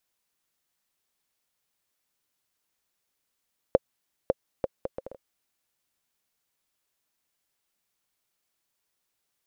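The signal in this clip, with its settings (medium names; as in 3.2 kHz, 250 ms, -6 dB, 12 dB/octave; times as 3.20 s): bouncing ball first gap 0.55 s, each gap 0.62, 532 Hz, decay 31 ms -5.5 dBFS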